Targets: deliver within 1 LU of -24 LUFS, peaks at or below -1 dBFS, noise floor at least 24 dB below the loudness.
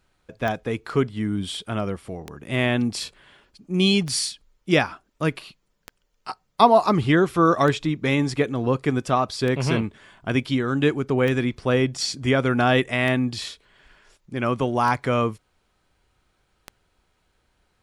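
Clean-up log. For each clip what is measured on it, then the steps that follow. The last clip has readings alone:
clicks found 10; loudness -22.5 LUFS; peak level -2.0 dBFS; loudness target -24.0 LUFS
-> de-click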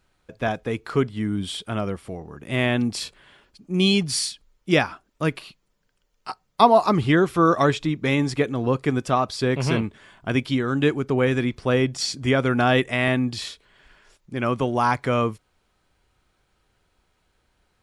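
clicks found 0; loudness -22.5 LUFS; peak level -2.0 dBFS; loudness target -24.0 LUFS
-> trim -1.5 dB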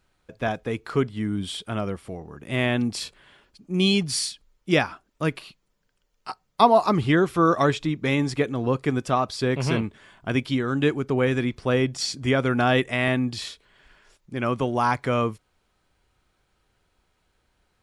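loudness -24.0 LUFS; peak level -3.5 dBFS; noise floor -71 dBFS

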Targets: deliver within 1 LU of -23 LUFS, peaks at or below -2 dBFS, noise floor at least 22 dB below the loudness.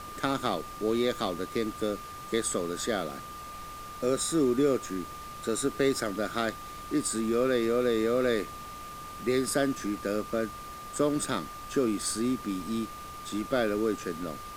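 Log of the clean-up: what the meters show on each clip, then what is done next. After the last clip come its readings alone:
steady tone 1.2 kHz; tone level -41 dBFS; noise floor -42 dBFS; noise floor target -52 dBFS; loudness -30.0 LUFS; peak level -11.0 dBFS; loudness target -23.0 LUFS
-> band-stop 1.2 kHz, Q 30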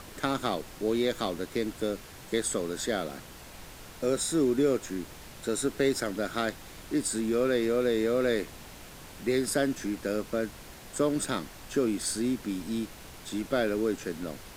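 steady tone not found; noise floor -47 dBFS; noise floor target -52 dBFS
-> noise print and reduce 6 dB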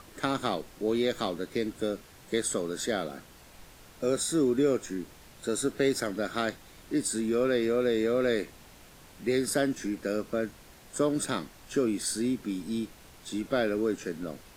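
noise floor -53 dBFS; loudness -30.0 LUFS; peak level -11.0 dBFS; loudness target -23.0 LUFS
-> trim +7 dB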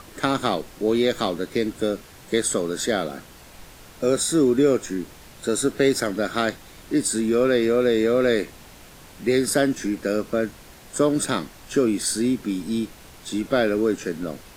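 loudness -23.0 LUFS; peak level -4.0 dBFS; noise floor -46 dBFS

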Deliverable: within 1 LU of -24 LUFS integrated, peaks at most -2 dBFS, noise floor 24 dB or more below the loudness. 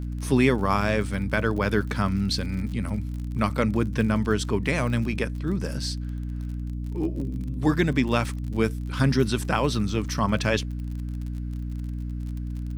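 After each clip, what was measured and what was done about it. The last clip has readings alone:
tick rate 46 per s; hum 60 Hz; highest harmonic 300 Hz; hum level -28 dBFS; loudness -26.0 LUFS; peak level -7.0 dBFS; loudness target -24.0 LUFS
-> de-click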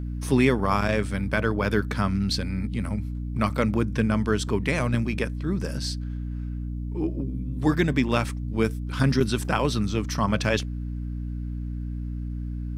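tick rate 0.078 per s; hum 60 Hz; highest harmonic 300 Hz; hum level -28 dBFS
-> de-hum 60 Hz, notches 5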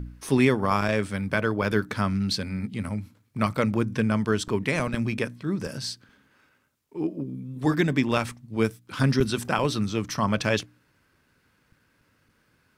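hum not found; loudness -26.5 LUFS; peak level -7.5 dBFS; loudness target -24.0 LUFS
-> trim +2.5 dB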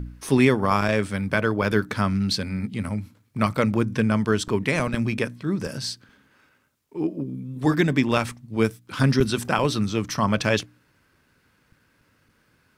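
loudness -24.0 LUFS; peak level -5.0 dBFS; noise floor -65 dBFS

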